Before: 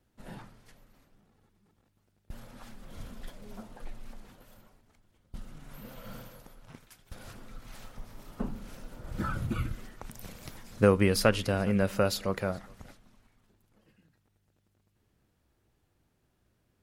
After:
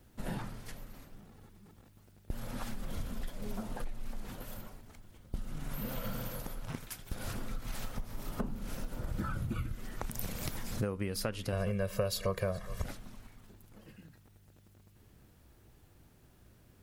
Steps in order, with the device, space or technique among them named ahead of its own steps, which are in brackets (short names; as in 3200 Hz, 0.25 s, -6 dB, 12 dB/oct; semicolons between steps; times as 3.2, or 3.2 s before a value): ASMR close-microphone chain (low shelf 200 Hz +4 dB; compressor 8:1, threshold -42 dBFS, peak gain reduction 26 dB; high shelf 11000 Hz +7.5 dB); 11.52–12.84 comb 1.8 ms, depth 93%; gain +9 dB